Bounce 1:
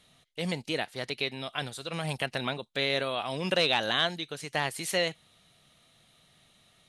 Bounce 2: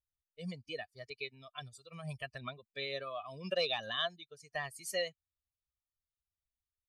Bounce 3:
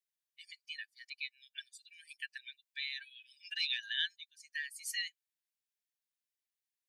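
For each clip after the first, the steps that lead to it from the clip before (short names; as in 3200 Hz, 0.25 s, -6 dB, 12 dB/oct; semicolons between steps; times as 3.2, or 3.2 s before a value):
per-bin expansion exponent 2; comb 1.7 ms, depth 65%; gain -6.5 dB
brick-wall FIR high-pass 1500 Hz; gain +1.5 dB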